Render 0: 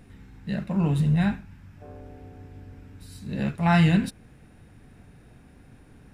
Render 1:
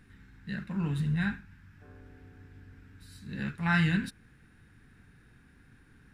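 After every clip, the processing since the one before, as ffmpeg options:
-af "equalizer=f=630:t=o:w=0.67:g=-12,equalizer=f=1600:t=o:w=0.67:g=10,equalizer=f=4000:t=o:w=0.67:g=3,volume=0.422"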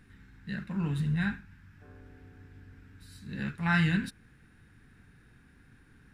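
-af anull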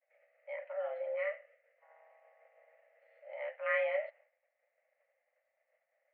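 -af "agate=range=0.0224:threshold=0.00398:ratio=3:detection=peak,highpass=f=160:t=q:w=0.5412,highpass=f=160:t=q:w=1.307,lowpass=f=2100:t=q:w=0.5176,lowpass=f=2100:t=q:w=0.7071,lowpass=f=2100:t=q:w=1.932,afreqshift=380,volume=0.562"

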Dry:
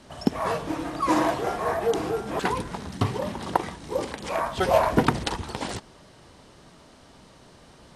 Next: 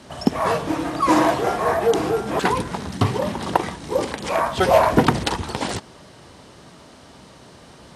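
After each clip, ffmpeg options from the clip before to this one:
-af "acontrast=89,highpass=59,volume=0.891"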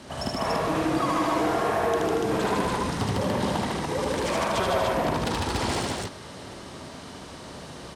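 -filter_complex "[0:a]acompressor=threshold=0.0631:ratio=6,asoftclip=type=tanh:threshold=0.0708,asplit=2[s0][s1];[s1]aecho=0:1:75.8|151.6|233.2|288.6:0.794|0.794|0.447|0.794[s2];[s0][s2]amix=inputs=2:normalize=0"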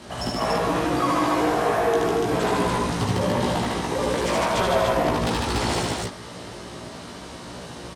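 -filter_complex "[0:a]asplit=2[s0][s1];[s1]adelay=17,volume=0.794[s2];[s0][s2]amix=inputs=2:normalize=0,volume=1.12"

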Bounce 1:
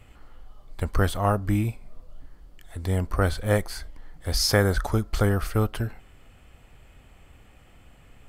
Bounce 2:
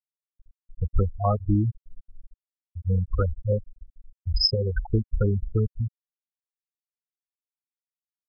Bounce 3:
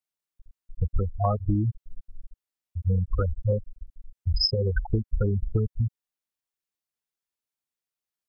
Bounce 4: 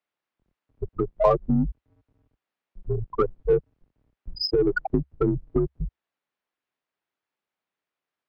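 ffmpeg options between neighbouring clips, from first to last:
-af "alimiter=limit=0.251:level=0:latency=1:release=400,afftfilt=real='re*gte(hypot(re,im),0.251)':imag='im*gte(hypot(re,im),0.251)':win_size=1024:overlap=0.75,aemphasis=mode=production:type=50fm,volume=1.41"
-af "acompressor=threshold=0.0631:ratio=6,volume=1.58"
-filter_complex "[0:a]highpass=270,lowpass=2400,asplit=2[s0][s1];[s1]asoftclip=type=tanh:threshold=0.0299,volume=0.501[s2];[s0][s2]amix=inputs=2:normalize=0,afreqshift=-69,volume=2.24"

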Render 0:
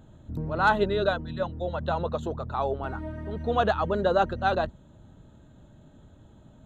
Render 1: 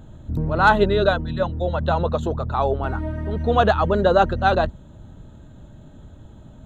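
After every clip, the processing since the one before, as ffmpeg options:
-af "lowshelf=f=80:g=7.5,volume=2.11"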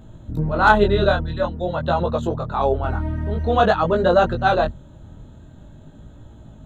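-af "flanger=delay=17:depth=7.9:speed=0.48,volume=1.5"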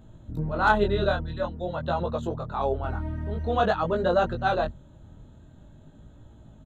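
-af "aresample=32000,aresample=44100,volume=0.447"

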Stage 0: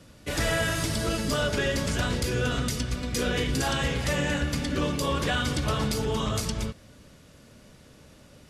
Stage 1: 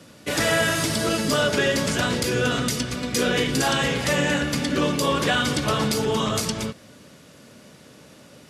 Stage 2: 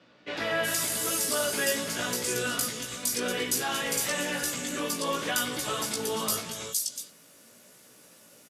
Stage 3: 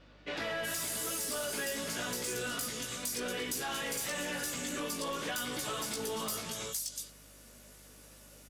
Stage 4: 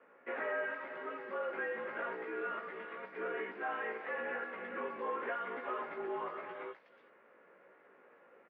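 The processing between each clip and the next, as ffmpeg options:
-af "highpass=150,volume=2"
-filter_complex "[0:a]aemphasis=mode=production:type=bsi,flanger=delay=16:depth=2.1:speed=0.89,acrossover=split=3800[s0][s1];[s1]adelay=370[s2];[s0][s2]amix=inputs=2:normalize=0,volume=0.562"
-af "asoftclip=type=tanh:threshold=0.0596,acompressor=threshold=0.0251:ratio=6,aeval=exprs='val(0)+0.00126*(sin(2*PI*50*n/s)+sin(2*PI*2*50*n/s)/2+sin(2*PI*3*50*n/s)/3+sin(2*PI*4*50*n/s)/4+sin(2*PI*5*50*n/s)/5)':c=same,volume=0.841"
-af "highpass=f=400:t=q:w=0.5412,highpass=f=400:t=q:w=1.307,lowpass=f=2100:t=q:w=0.5176,lowpass=f=2100:t=q:w=0.7071,lowpass=f=2100:t=q:w=1.932,afreqshift=-51,volume=1.12"

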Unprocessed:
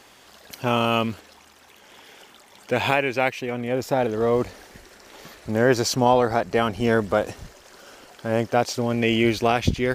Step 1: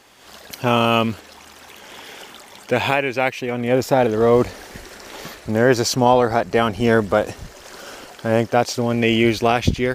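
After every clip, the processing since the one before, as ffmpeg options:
-af "dynaudnorm=f=170:g=3:m=3.35,volume=0.891"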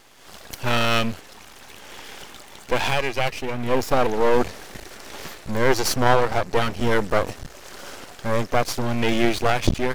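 -af "aeval=exprs='max(val(0),0)':c=same,volume=1.33"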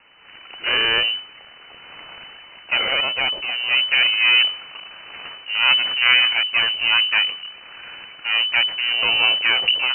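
-af "lowpass=f=2600:t=q:w=0.5098,lowpass=f=2600:t=q:w=0.6013,lowpass=f=2600:t=q:w=0.9,lowpass=f=2600:t=q:w=2.563,afreqshift=-3000,volume=1.12"

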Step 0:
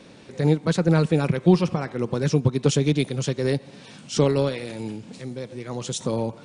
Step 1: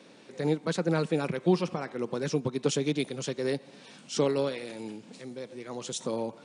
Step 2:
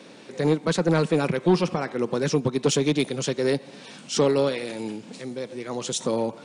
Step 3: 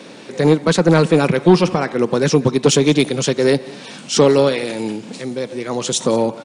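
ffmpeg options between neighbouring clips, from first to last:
-af "highpass=220,volume=0.562"
-af "asoftclip=type=tanh:threshold=0.119,volume=2.37"
-af "aecho=1:1:182:0.0841,volume=2.66"

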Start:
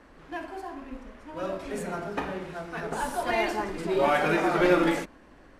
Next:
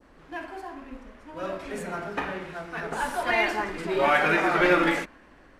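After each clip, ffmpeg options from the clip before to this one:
-af "adynamicequalizer=threshold=0.00891:dfrequency=1900:dqfactor=0.71:tfrequency=1900:tqfactor=0.71:attack=5:release=100:ratio=0.375:range=4:mode=boostabove:tftype=bell,volume=0.841"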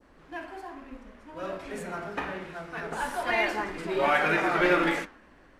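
-af "flanger=delay=8.6:depth=9.9:regen=86:speed=1.2:shape=triangular,volume=1.26"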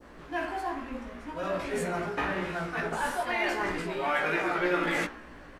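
-filter_complex "[0:a]areverse,acompressor=threshold=0.0158:ratio=4,areverse,asplit=2[s0][s1];[s1]adelay=17,volume=0.708[s2];[s0][s2]amix=inputs=2:normalize=0,volume=2.11"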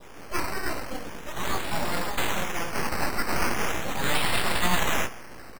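-af "aresample=8000,aeval=exprs='abs(val(0))':c=same,aresample=44100,acrusher=samples=10:mix=1:aa=0.000001:lfo=1:lforange=6:lforate=0.4,volume=2.11"

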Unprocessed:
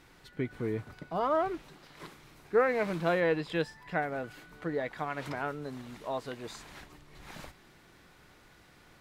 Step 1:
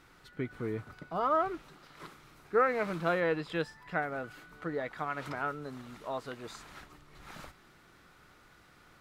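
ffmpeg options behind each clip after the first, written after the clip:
-af "equalizer=f=1300:w=4.4:g=8,volume=0.75"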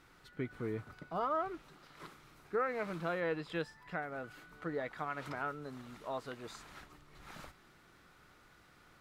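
-af "alimiter=limit=0.075:level=0:latency=1:release=416,volume=0.708"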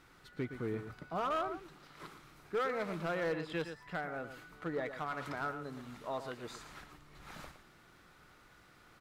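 -af "aecho=1:1:115:0.299,asoftclip=type=hard:threshold=0.0299,volume=1.12"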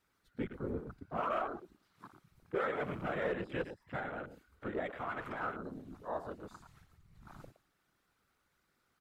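-af "afftfilt=real='hypot(re,im)*cos(2*PI*random(0))':imag='hypot(re,im)*sin(2*PI*random(1))':win_size=512:overlap=0.75,afwtdn=0.00251,crystalizer=i=1:c=0,volume=1.88"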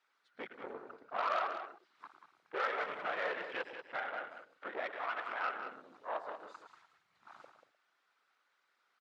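-af "aeval=exprs='0.0708*(cos(1*acos(clip(val(0)/0.0708,-1,1)))-cos(1*PI/2))+0.00708*(cos(6*acos(clip(val(0)/0.0708,-1,1)))-cos(6*PI/2))':c=same,highpass=700,lowpass=4600,aecho=1:1:187:0.355,volume=1.33"

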